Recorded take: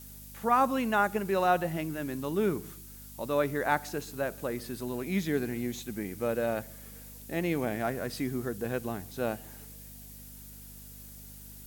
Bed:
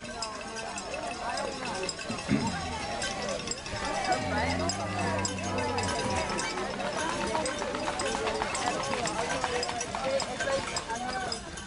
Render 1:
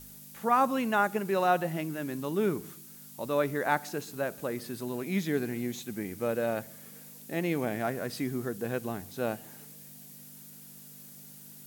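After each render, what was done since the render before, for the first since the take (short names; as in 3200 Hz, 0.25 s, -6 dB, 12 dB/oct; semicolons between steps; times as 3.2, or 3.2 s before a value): de-hum 50 Hz, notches 2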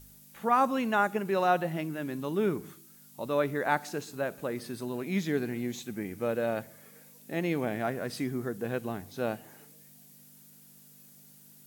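noise print and reduce 6 dB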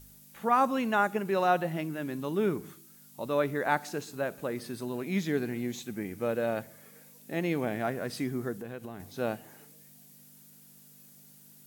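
8.53–9 compressor 3:1, threshold -38 dBFS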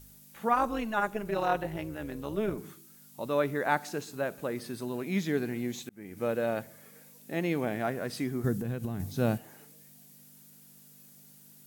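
0.53–2.58 AM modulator 220 Hz, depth 55%; 5.5–6.17 auto swell 0.392 s; 8.44–9.38 tone controls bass +14 dB, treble +5 dB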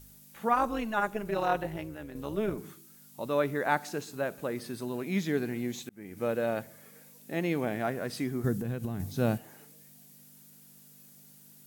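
1.65–2.15 fade out, to -6.5 dB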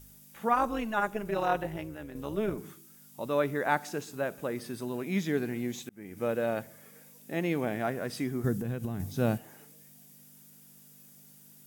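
notch 4200 Hz, Q 12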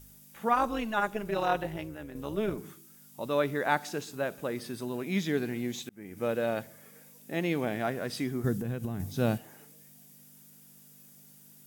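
dynamic EQ 3800 Hz, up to +5 dB, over -53 dBFS, Q 1.4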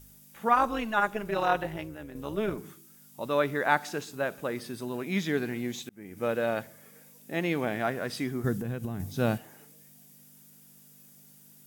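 dynamic EQ 1400 Hz, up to +4 dB, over -42 dBFS, Q 0.71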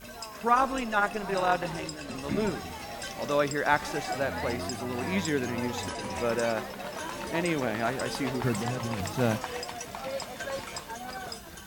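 add bed -5.5 dB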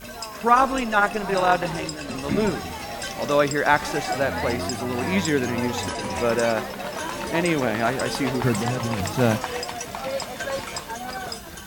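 gain +6.5 dB; limiter -3 dBFS, peak gain reduction 1.5 dB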